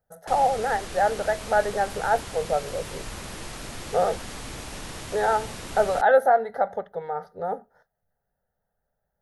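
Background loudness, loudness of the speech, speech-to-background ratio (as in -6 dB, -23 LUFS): -37.0 LUFS, -25.0 LUFS, 12.0 dB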